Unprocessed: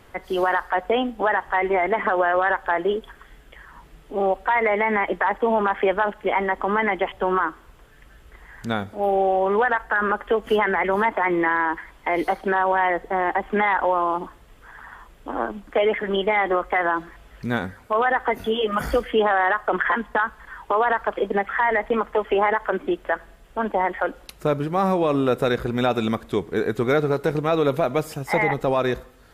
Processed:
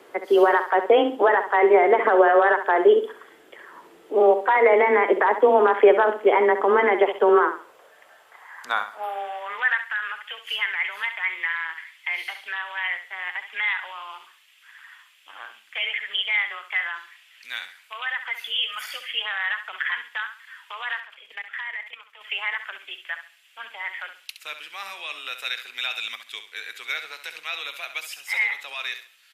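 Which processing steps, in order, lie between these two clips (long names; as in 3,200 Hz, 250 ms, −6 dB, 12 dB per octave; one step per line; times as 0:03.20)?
high-pass filter sweep 360 Hz → 2,600 Hz, 0:07.27–0:09.98
frequency shifter +16 Hz
0:21.00–0:22.21: output level in coarse steps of 16 dB
on a send: repeating echo 67 ms, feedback 27%, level −10 dB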